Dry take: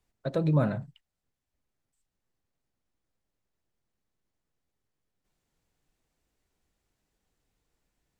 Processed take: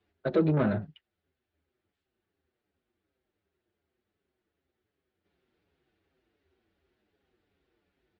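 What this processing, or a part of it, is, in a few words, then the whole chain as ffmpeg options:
barber-pole flanger into a guitar amplifier: -filter_complex "[0:a]asplit=2[a][b];[b]adelay=6.3,afreqshift=-2.7[c];[a][c]amix=inputs=2:normalize=1,asoftclip=type=tanh:threshold=-27dB,highpass=81,equalizer=f=81:t=q:w=4:g=8,equalizer=f=130:t=q:w=4:g=-10,equalizer=f=370:t=q:w=4:g=10,equalizer=f=1k:t=q:w=4:g=-5,equalizer=f=1.5k:t=q:w=4:g=3,lowpass=f=3.8k:w=0.5412,lowpass=f=3.8k:w=1.3066,volume=7.5dB"

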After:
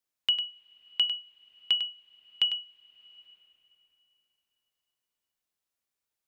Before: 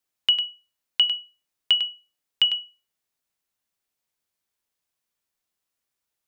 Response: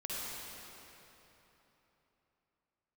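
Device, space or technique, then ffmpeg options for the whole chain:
ducked reverb: -filter_complex "[0:a]asplit=3[a][b][c];[1:a]atrim=start_sample=2205[d];[b][d]afir=irnorm=-1:irlink=0[e];[c]apad=whole_len=276825[f];[e][f]sidechaincompress=threshold=-36dB:ratio=6:attack=11:release=528,volume=-14dB[g];[a][g]amix=inputs=2:normalize=0,volume=-6dB"

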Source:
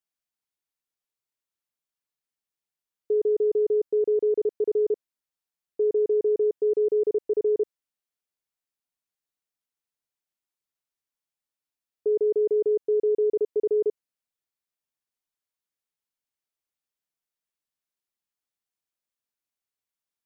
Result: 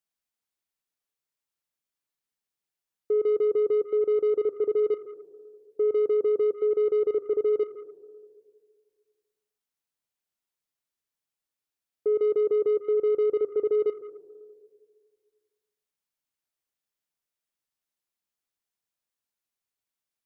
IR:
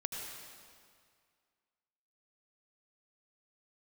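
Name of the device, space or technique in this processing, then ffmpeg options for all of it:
saturated reverb return: -filter_complex "[0:a]asplit=2[a][b];[1:a]atrim=start_sample=2205[c];[b][c]afir=irnorm=-1:irlink=0,asoftclip=type=tanh:threshold=-27dB,volume=-7.5dB[d];[a][d]amix=inputs=2:normalize=0,volume=-2dB"

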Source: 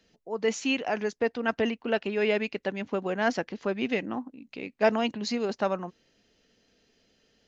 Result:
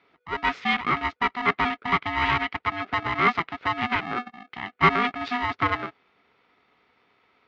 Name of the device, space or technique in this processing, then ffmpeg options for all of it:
ring modulator pedal into a guitar cabinet: -af "aeval=exprs='val(0)*sgn(sin(2*PI*490*n/s))':c=same,highpass=92,equalizer=f=410:t=q:w=4:g=10,equalizer=f=1.3k:t=q:w=4:g=10,equalizer=f=2.1k:t=q:w=4:g=9,lowpass=f=3.7k:w=0.5412,lowpass=f=3.7k:w=1.3066"

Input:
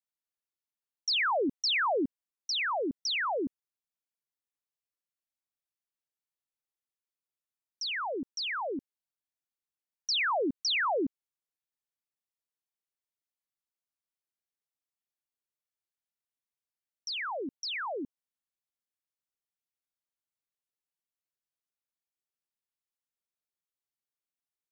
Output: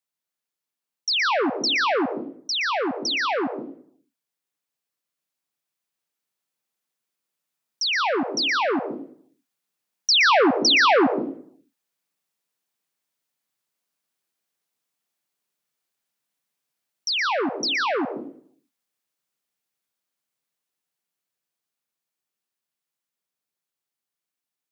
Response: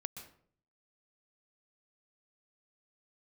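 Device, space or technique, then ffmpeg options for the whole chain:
far laptop microphone: -filter_complex "[1:a]atrim=start_sample=2205[a];[0:a][a]afir=irnorm=-1:irlink=0,highpass=f=130:w=0.5412,highpass=f=130:w=1.3066,dynaudnorm=f=950:g=13:m=6dB,volume=8.5dB"

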